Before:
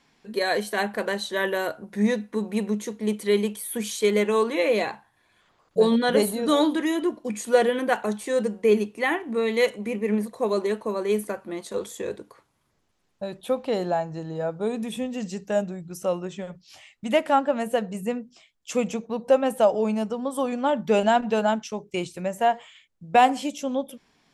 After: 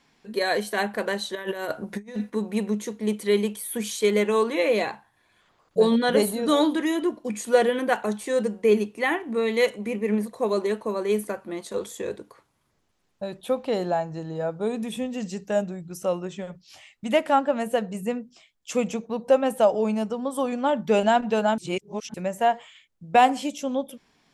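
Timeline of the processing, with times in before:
0:01.35–0:02.30: compressor whose output falls as the input rises −30 dBFS, ratio −0.5
0:21.58–0:22.14: reverse

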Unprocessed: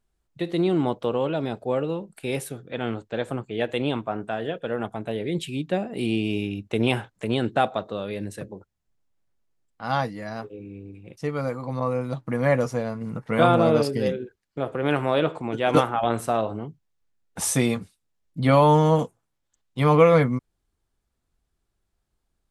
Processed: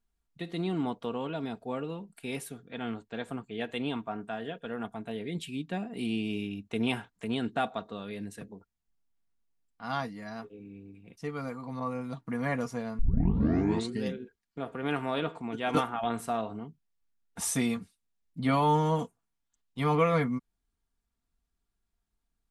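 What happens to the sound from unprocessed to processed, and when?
0:12.99: tape start 1.04 s
whole clip: parametric band 520 Hz −7.5 dB 0.48 octaves; comb filter 4.3 ms, depth 42%; level −7 dB

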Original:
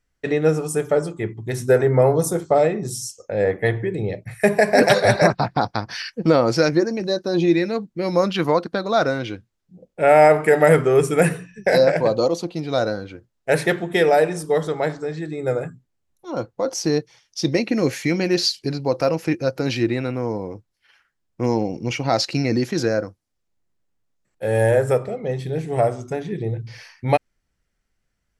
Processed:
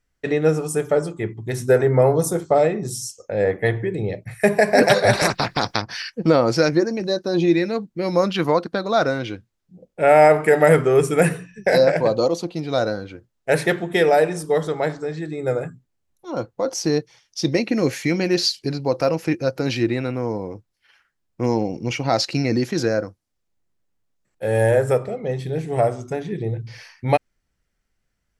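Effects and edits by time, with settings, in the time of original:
0:05.13–0:05.82: every bin compressed towards the loudest bin 2 to 1

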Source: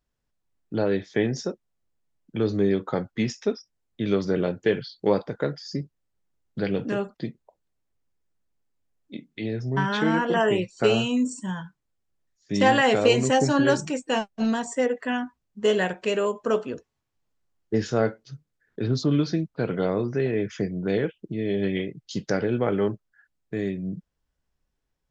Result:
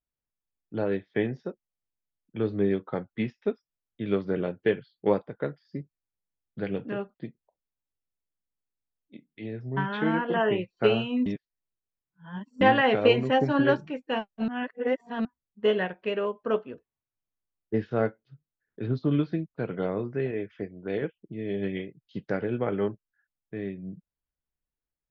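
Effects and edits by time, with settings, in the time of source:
0:11.26–0:12.61: reverse
0:14.48–0:15.25: reverse
0:20.31–0:21.02: parametric band 150 Hz −10.5 dB 0.69 octaves
whole clip: low-pass filter 3,300 Hz 24 dB per octave; expander for the loud parts 1.5 to 1, over −43 dBFS

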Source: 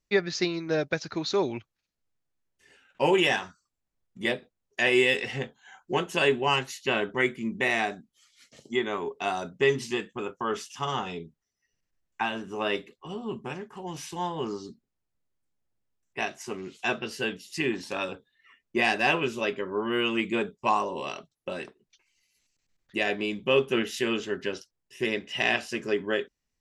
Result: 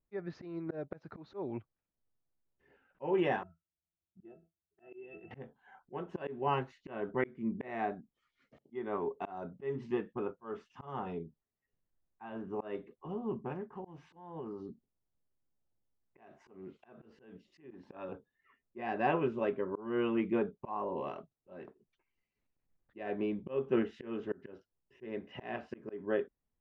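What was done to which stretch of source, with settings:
0:03.43–0:05.31: resonances in every octave E, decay 0.13 s
0:13.95–0:17.71: downward compressor 10 to 1, threshold −35 dBFS
whole clip: low-pass filter 1,100 Hz 12 dB per octave; volume swells 263 ms; level −2.5 dB

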